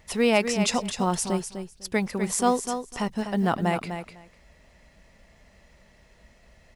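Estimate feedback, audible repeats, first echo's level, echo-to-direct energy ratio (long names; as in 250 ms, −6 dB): 15%, 2, −8.5 dB, −8.5 dB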